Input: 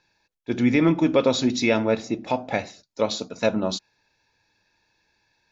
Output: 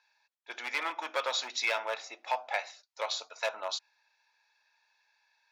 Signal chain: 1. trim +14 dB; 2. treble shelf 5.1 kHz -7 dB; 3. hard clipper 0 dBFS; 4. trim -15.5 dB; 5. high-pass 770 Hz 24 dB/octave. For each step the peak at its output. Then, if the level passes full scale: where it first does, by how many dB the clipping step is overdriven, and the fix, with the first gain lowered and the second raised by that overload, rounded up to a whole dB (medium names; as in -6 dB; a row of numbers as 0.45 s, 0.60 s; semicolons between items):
+6.5 dBFS, +6.0 dBFS, 0.0 dBFS, -15.5 dBFS, -17.0 dBFS; step 1, 6.0 dB; step 1 +8 dB, step 4 -9.5 dB